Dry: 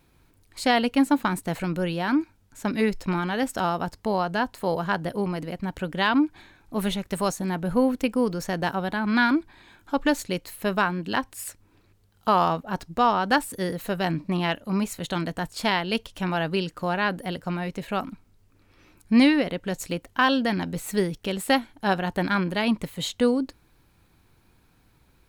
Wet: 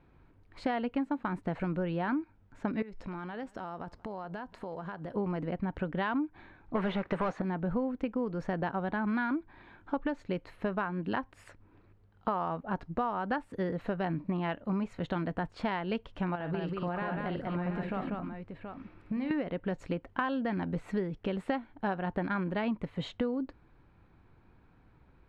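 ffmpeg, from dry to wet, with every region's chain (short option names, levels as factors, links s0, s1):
-filter_complex "[0:a]asettb=1/sr,asplit=3[s0][s1][s2];[s0]atrim=end=2.824[s3];[s1]atrim=start=2.82:end=5.16,asetpts=PTS-STARTPTS,afade=t=in:d=0.004:c=qsin,afade=t=out:st=2.336:d=0.004:c=qsin,bass=f=250:g=-2,treble=f=4000:g=8,acompressor=threshold=0.0158:ratio=8:attack=3.2:release=140:knee=1:detection=peak,aecho=1:1:183:0.0668,atrim=end_sample=103194[s4];[s2]atrim=start=5.156[s5];[s3][s4]acrossfade=d=0.004:c1=hsin:c2=qsin[s6];[s6][s5]acrossfade=d=0.004:c1=qsin:c2=hsin,asettb=1/sr,asplit=3[s7][s8][s9];[s7]atrim=end=6.754[s10];[s8]atrim=start=6.75:end=7.42,asetpts=PTS-STARTPTS,afade=t=in:d=0.004:c=qsin,afade=t=out:st=0.666:d=0.004:c=qsin,highshelf=f=6400:g=-11,asplit=2[s11][s12];[s12]highpass=f=720:p=1,volume=15.8,asoftclip=type=tanh:threshold=0.237[s13];[s11][s13]amix=inputs=2:normalize=0,lowpass=f=3200:p=1,volume=0.501[s14];[s9]atrim=start=7.416[s15];[s10][s14]acrossfade=d=0.004:c1=hsin:c2=qsin[s16];[s16][s15]acrossfade=d=0.004:c1=qsin:c2=hsin,asettb=1/sr,asplit=3[s17][s18][s19];[s17]atrim=end=16.354[s20];[s18]atrim=start=16.35:end=19.31,asetpts=PTS-STARTPTS,afade=t=in:d=0.004:c=qsin,afade=t=out:st=2.956:d=0.004:c=qsin,bandreject=f=6400:w=6.5,acompressor=threshold=0.0355:ratio=10:attack=3.2:release=140:knee=1:detection=peak,aecho=1:1:51|192|727:0.355|0.668|0.376,atrim=end_sample=130536[s21];[s19]atrim=start=19.306[s22];[s20][s21]acrossfade=d=0.004:c1=hsin:c2=qsin[s23];[s23][s22]acrossfade=d=0.004:c1=qsin:c2=hsin,lowpass=1800,acompressor=threshold=0.0355:ratio=6"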